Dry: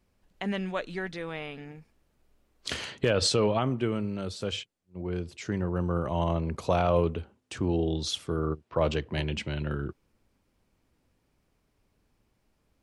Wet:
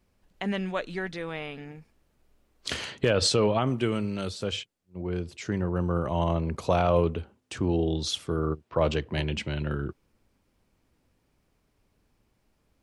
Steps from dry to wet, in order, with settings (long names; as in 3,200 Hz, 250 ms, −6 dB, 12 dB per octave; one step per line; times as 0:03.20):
0:03.66–0:04.29: high-shelf EQ 4,000 Hz → 2,100 Hz +10.5 dB
level +1.5 dB